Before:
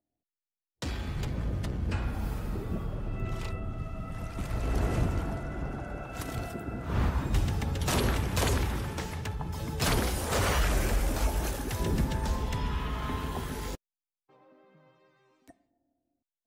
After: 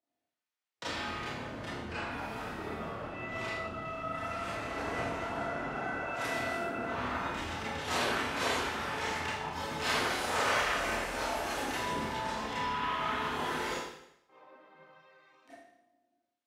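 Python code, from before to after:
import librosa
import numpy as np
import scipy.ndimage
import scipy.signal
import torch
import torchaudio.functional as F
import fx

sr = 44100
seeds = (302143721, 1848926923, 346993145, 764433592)

p1 = fx.over_compress(x, sr, threshold_db=-35.0, ratio=-1.0)
p2 = x + (p1 * 10.0 ** (-2.0 / 20.0))
p3 = fx.bandpass_q(p2, sr, hz=1600.0, q=0.54)
p4 = fx.rev_schroeder(p3, sr, rt60_s=0.77, comb_ms=25, drr_db=-9.5)
y = p4 * 10.0 ** (-8.0 / 20.0)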